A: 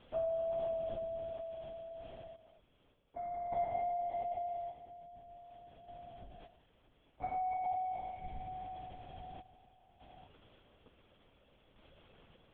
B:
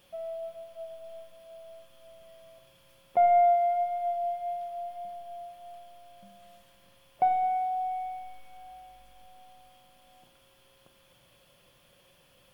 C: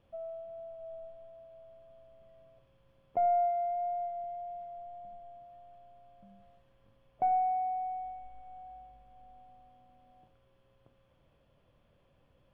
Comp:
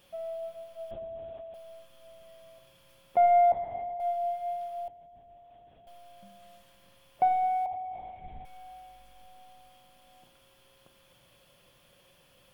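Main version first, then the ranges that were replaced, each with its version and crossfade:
B
0.91–1.54 from A
3.52–4 from A
4.88–5.87 from A
7.66–8.45 from A
not used: C

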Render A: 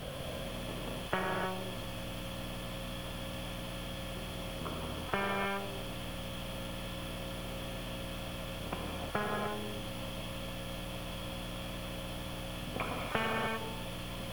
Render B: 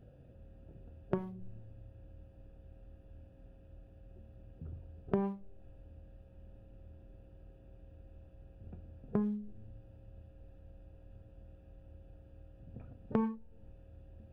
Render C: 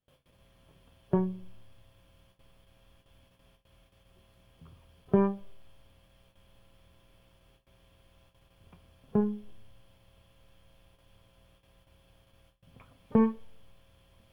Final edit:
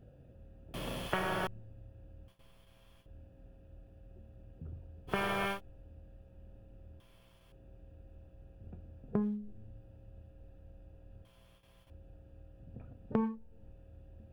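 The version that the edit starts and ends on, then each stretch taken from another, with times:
B
0.74–1.47 from A
2.28–3.06 from C
5.12–5.56 from A, crossfade 0.10 s
7–7.52 from C
11.25–11.9 from C

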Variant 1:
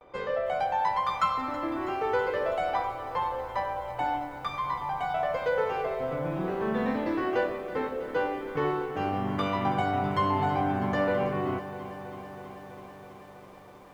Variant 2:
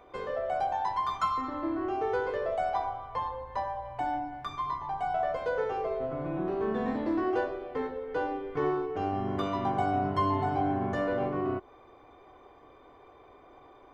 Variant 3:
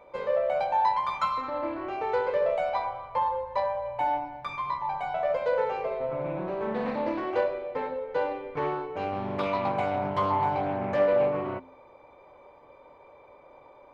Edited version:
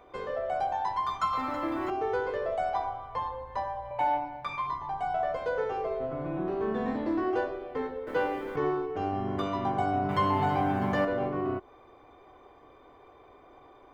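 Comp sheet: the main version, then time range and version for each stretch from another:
2
1.33–1.9 from 1
3.91–4.67 from 3
8.07–8.56 from 1
10.09–11.05 from 1

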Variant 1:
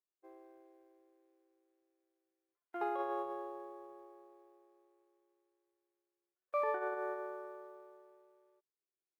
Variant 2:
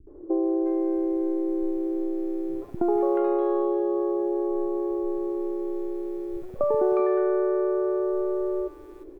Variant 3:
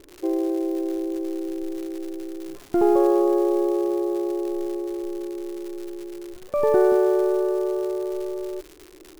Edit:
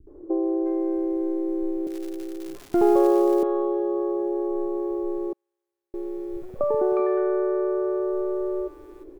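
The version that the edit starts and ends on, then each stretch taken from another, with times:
2
1.87–3.43 from 3
5.33–5.94 from 1

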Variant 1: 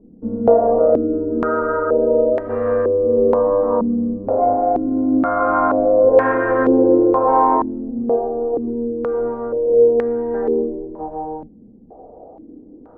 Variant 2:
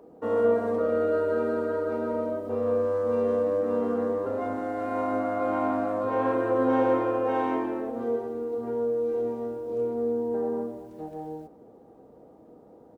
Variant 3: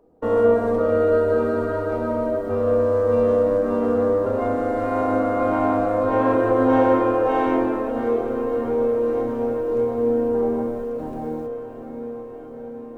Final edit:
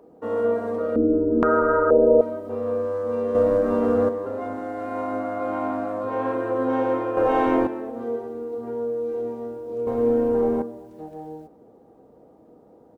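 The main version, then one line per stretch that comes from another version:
2
0.96–2.21 from 1
3.35–4.09 from 3
7.17–7.67 from 3
9.87–10.62 from 3

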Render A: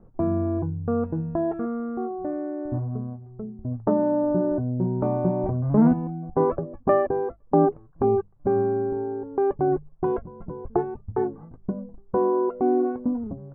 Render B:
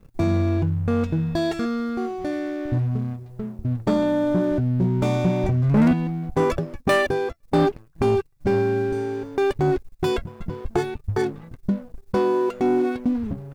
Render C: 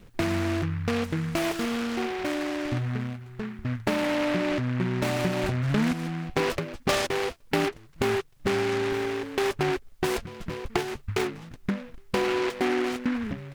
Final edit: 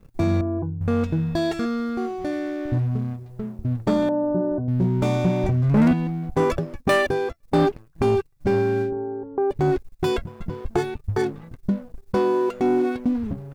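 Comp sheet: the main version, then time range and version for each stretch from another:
B
0.41–0.81 from A
4.09–4.68 from A
8.87–9.54 from A, crossfade 0.10 s
not used: C

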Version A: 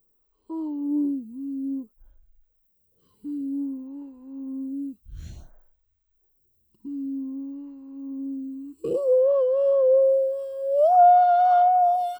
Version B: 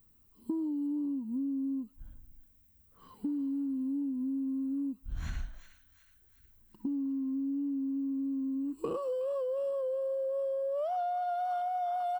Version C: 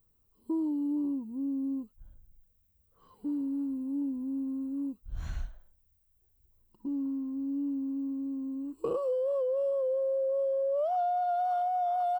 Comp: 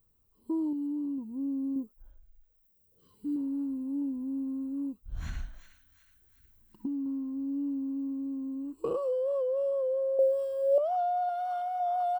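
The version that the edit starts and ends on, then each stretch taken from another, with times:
C
0.73–1.18 from B
1.76–3.36 from A
5.21–7.06 from B
10.19–10.78 from A
11.29–11.8 from B

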